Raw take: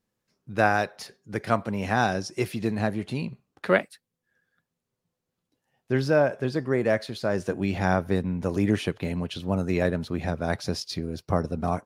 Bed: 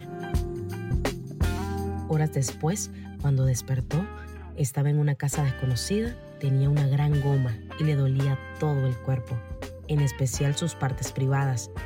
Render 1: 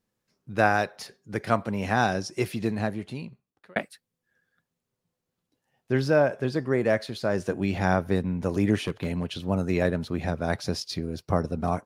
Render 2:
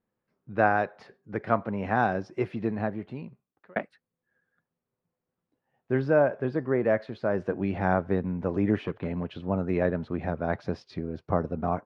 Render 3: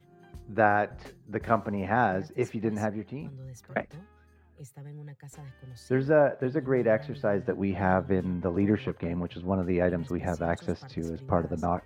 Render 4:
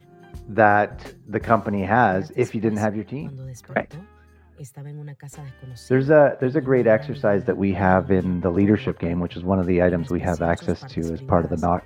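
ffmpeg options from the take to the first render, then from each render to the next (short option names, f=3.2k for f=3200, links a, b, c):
-filter_complex "[0:a]asettb=1/sr,asplit=3[a][b][c];[a]atrim=end=8.834[d];[b]atrim=start=8.83:end=9.3,asetpts=PTS-STARTPTS,afade=t=in:d=0.004:c=qsin,afade=t=out:st=0.466:d=0.004:c=qsin,asoftclip=type=hard:threshold=-21dB[e];[c]atrim=start=9.296[f];[d][e]acrossfade=d=0.004:c1=hsin:c2=qsin[g];[g][f]acrossfade=d=0.004:c1=qsin:c2=hsin,asplit=2[h][i];[h]atrim=end=3.76,asetpts=PTS-STARTPTS,afade=t=out:st=2.62:d=1.14[j];[i]atrim=start=3.76,asetpts=PTS-STARTPTS,afade=t=in:d=0.004:c=hsin[k];[j][k]concat=n=2:v=0:a=1"
-af "lowpass=1.7k,lowshelf=f=150:g=-5.5"
-filter_complex "[1:a]volume=-20dB[a];[0:a][a]amix=inputs=2:normalize=0"
-af "volume=7.5dB,alimiter=limit=-1dB:level=0:latency=1"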